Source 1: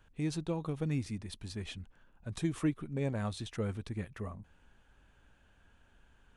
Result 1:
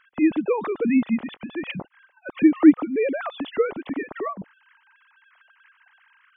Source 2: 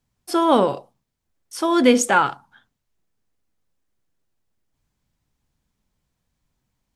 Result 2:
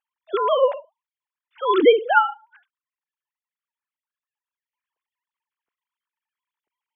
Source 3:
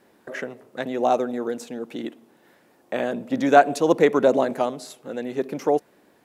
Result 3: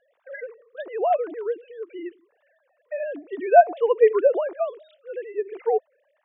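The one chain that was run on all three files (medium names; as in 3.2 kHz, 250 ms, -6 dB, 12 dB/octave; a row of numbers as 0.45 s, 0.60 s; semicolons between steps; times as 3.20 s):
formants replaced by sine waves; dynamic bell 1.6 kHz, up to -3 dB, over -38 dBFS, Q 1.3; peak normalisation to -3 dBFS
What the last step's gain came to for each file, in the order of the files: +14.5 dB, 0.0 dB, -0.5 dB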